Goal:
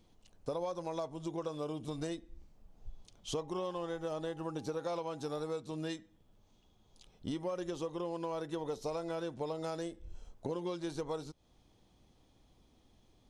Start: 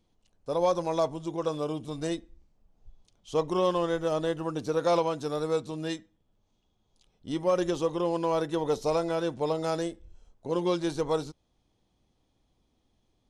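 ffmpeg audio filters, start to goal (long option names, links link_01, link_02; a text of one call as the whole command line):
ffmpeg -i in.wav -filter_complex "[0:a]acompressor=threshold=-41dB:ratio=8,asettb=1/sr,asplit=3[link_01][link_02][link_03];[link_01]atrim=end=3.414[link_04];[link_02]atrim=start=3.41:end=5.5,asetpts=PTS-STARTPTS,afade=type=in:duration=0.004:curve=qsin,afade=type=out:start_time=2.086:duration=0.004:curve=qsin,aeval=exprs='val(0)+0.000794*sin(2*PI*810*n/s)':channel_layout=same[link_05];[link_03]atrim=start=5.496[link_06];[link_04][link_05]acrossfade=duration=0.004:curve1=hsin:curve2=qsin[link_07];[link_07][link_06]acrossfade=duration=0.004:curve1=qsin:curve2=hsin,volume=5.5dB" out.wav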